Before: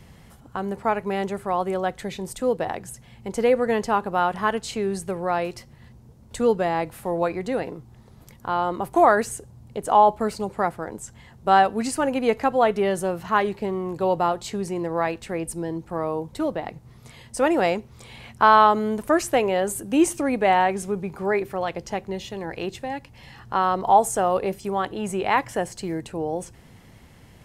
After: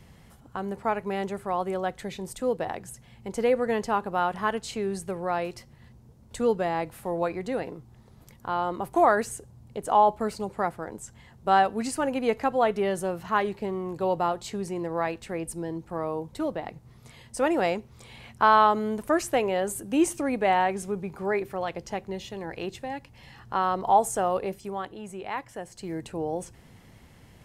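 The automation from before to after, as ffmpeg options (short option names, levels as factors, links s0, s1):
-af "volume=1.78,afade=t=out:st=24.26:d=0.81:silence=0.398107,afade=t=in:st=25.66:d=0.4:silence=0.354813"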